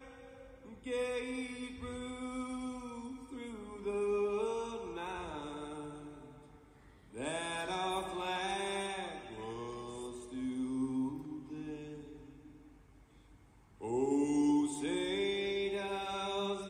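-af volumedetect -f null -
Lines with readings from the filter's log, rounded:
mean_volume: -38.4 dB
max_volume: -21.6 dB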